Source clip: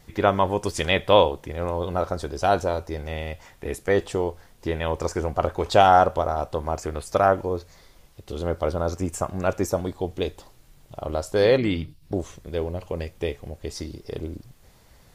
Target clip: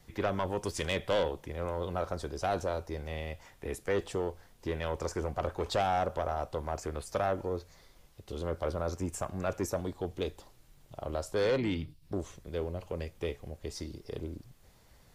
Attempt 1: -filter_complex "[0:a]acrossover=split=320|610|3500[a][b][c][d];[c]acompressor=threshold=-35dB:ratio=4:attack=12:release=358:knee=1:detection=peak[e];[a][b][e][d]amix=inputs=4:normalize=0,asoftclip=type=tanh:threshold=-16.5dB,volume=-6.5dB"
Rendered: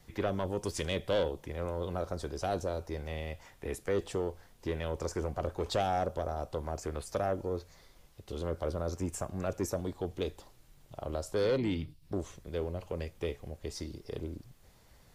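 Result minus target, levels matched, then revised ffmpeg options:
compressor: peak gain reduction +8.5 dB
-filter_complex "[0:a]acrossover=split=320|610|3500[a][b][c][d];[c]acompressor=threshold=-23.5dB:ratio=4:attack=12:release=358:knee=1:detection=peak[e];[a][b][e][d]amix=inputs=4:normalize=0,asoftclip=type=tanh:threshold=-16.5dB,volume=-6.5dB"

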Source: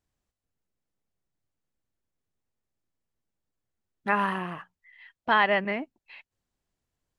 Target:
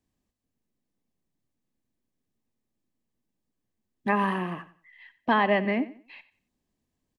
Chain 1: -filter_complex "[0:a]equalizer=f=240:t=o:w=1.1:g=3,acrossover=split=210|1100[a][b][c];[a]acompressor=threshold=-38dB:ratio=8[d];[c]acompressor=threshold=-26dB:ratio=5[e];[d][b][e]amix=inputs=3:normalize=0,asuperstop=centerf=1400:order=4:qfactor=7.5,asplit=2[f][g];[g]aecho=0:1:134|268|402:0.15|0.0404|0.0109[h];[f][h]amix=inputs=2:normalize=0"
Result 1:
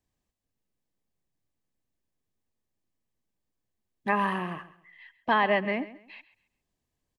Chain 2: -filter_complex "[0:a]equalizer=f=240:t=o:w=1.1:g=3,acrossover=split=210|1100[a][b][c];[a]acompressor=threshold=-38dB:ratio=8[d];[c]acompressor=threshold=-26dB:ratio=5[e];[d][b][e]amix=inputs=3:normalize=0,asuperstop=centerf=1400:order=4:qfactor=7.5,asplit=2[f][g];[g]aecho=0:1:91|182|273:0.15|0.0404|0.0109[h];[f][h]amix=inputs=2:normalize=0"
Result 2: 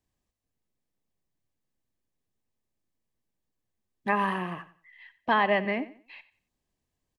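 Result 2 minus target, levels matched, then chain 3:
250 Hz band -3.5 dB
-filter_complex "[0:a]equalizer=f=240:t=o:w=1.1:g=11,acrossover=split=210|1100[a][b][c];[a]acompressor=threshold=-38dB:ratio=8[d];[c]acompressor=threshold=-26dB:ratio=5[e];[d][b][e]amix=inputs=3:normalize=0,asuperstop=centerf=1400:order=4:qfactor=7.5,asplit=2[f][g];[g]aecho=0:1:91|182|273:0.15|0.0404|0.0109[h];[f][h]amix=inputs=2:normalize=0"

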